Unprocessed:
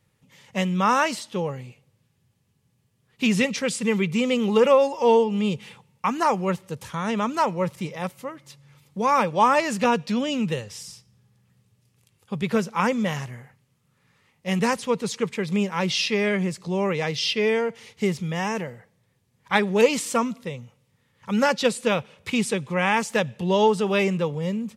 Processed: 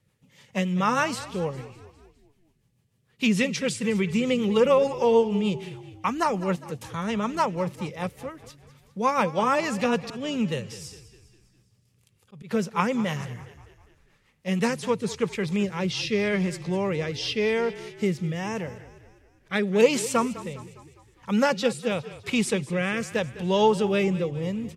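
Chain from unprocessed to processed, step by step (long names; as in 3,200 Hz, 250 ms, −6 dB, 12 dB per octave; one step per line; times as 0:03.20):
0:10.03–0:12.51: volume swells 220 ms
rotating-speaker cabinet horn 6.7 Hz, later 0.85 Hz, at 0:14.32
echo with shifted repeats 203 ms, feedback 52%, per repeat −34 Hz, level −16 dB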